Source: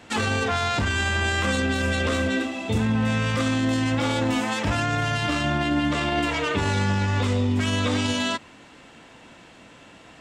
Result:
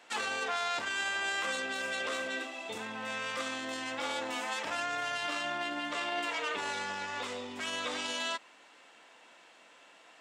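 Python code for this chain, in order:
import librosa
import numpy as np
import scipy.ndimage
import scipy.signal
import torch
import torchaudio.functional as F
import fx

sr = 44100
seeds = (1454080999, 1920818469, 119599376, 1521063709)

y = scipy.signal.sosfilt(scipy.signal.butter(2, 550.0, 'highpass', fs=sr, output='sos'), x)
y = F.gain(torch.from_numpy(y), -7.5).numpy()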